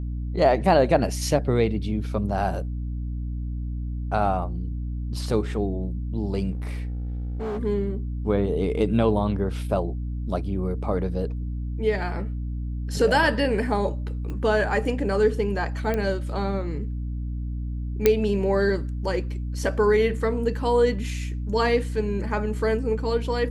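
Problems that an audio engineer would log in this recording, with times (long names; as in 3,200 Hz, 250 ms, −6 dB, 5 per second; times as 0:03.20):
mains hum 60 Hz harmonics 5 −29 dBFS
0:06.52–0:07.60: clipping −26 dBFS
0:14.30: click −23 dBFS
0:15.94: click −14 dBFS
0:18.06: click −4 dBFS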